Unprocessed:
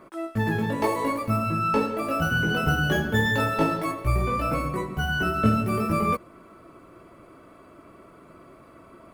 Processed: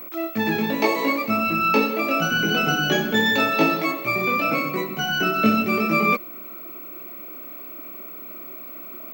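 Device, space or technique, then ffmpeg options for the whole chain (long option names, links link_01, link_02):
old television with a line whistle: -af "highpass=frequency=190:width=0.5412,highpass=frequency=190:width=1.3066,equalizer=frequency=500:width_type=q:width=4:gain=-3,equalizer=frequency=1000:width_type=q:width=4:gain=-5,equalizer=frequency=1600:width_type=q:width=4:gain=-4,equalizer=frequency=2400:width_type=q:width=4:gain=10,equalizer=frequency=4100:width_type=q:width=4:gain=7,equalizer=frequency=6100:width_type=q:width=4:gain=5,lowpass=frequency=7000:width=0.5412,lowpass=frequency=7000:width=1.3066,aeval=exprs='val(0)+0.01*sin(2*PI*15734*n/s)':channel_layout=same,volume=5dB"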